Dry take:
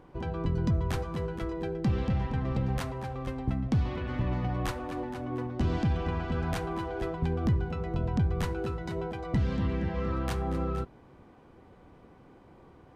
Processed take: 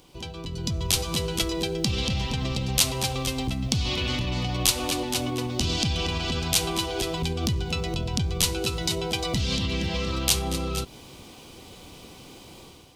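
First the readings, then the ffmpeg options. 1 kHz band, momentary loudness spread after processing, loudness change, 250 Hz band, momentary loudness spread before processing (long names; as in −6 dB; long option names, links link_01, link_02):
+3.0 dB, 22 LU, +5.5 dB, +2.0 dB, 7 LU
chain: -af "alimiter=level_in=4dB:limit=-24dB:level=0:latency=1:release=133,volume=-4dB,dynaudnorm=framelen=420:gausssize=3:maxgain=10dB,aexciter=amount=11.8:drive=5:freq=2600,volume=-2.5dB"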